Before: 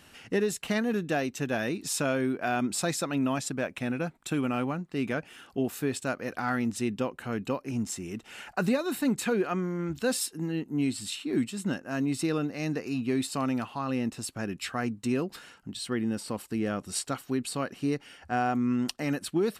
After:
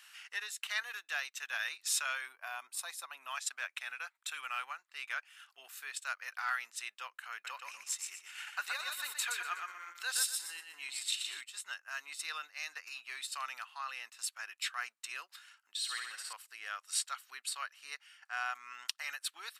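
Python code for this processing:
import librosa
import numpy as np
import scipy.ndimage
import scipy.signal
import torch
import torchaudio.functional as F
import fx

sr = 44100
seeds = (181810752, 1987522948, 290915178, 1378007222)

y = fx.spec_box(x, sr, start_s=2.28, length_s=1.0, low_hz=1200.0, high_hz=8700.0, gain_db=-8)
y = fx.echo_feedback(y, sr, ms=122, feedback_pct=36, wet_db=-4.5, at=(7.32, 11.41))
y = fx.room_flutter(y, sr, wall_m=11.4, rt60_s=1.0, at=(15.77, 16.33))
y = fx.dynamic_eq(y, sr, hz=3700.0, q=7.0, threshold_db=-54.0, ratio=4.0, max_db=4)
y = fx.transient(y, sr, attack_db=-3, sustain_db=-8)
y = scipy.signal.sosfilt(scipy.signal.butter(4, 1200.0, 'highpass', fs=sr, output='sos'), y)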